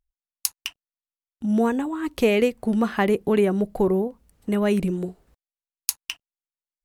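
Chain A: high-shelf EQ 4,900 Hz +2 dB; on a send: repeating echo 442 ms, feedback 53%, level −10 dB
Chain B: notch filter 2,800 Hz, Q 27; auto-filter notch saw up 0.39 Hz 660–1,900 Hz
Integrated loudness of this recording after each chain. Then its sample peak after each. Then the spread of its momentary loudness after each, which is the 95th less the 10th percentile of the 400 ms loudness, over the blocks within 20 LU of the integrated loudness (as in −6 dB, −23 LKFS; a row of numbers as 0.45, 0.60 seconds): −23.5, −24.0 LKFS; −1.0, −2.5 dBFS; 16, 15 LU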